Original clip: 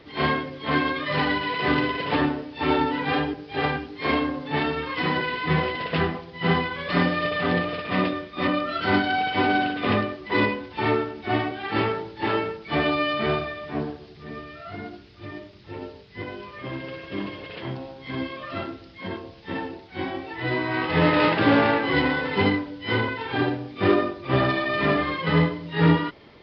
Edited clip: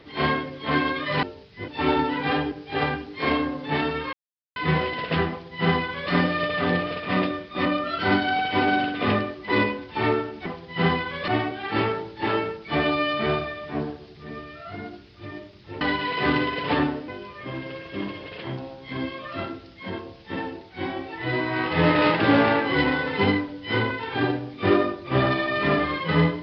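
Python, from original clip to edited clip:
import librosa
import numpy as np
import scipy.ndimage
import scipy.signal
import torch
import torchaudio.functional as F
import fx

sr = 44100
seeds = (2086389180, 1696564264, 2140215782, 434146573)

y = fx.edit(x, sr, fx.swap(start_s=1.23, length_s=1.27, other_s=15.81, other_length_s=0.45),
    fx.silence(start_s=4.95, length_s=0.43),
    fx.duplicate(start_s=6.11, length_s=0.82, to_s=11.28), tone=tone)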